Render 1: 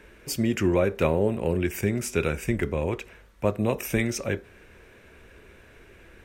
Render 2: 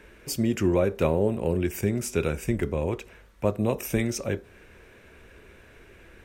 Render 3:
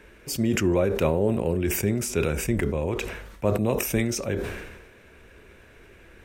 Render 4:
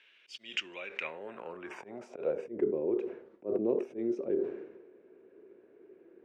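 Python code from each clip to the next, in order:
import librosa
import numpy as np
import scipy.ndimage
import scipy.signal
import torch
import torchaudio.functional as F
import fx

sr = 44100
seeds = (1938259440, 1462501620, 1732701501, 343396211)

y1 = fx.dynamic_eq(x, sr, hz=2000.0, q=1.0, threshold_db=-45.0, ratio=4.0, max_db=-5)
y2 = fx.sustainer(y1, sr, db_per_s=46.0)
y3 = fx.auto_swell(y2, sr, attack_ms=116.0)
y3 = fx.filter_sweep_bandpass(y3, sr, from_hz=3100.0, to_hz=370.0, start_s=0.69, end_s=2.67, q=3.8)
y3 = fx.bandpass_edges(y3, sr, low_hz=170.0, high_hz=6100.0)
y3 = F.gain(torch.from_numpy(y3), 2.5).numpy()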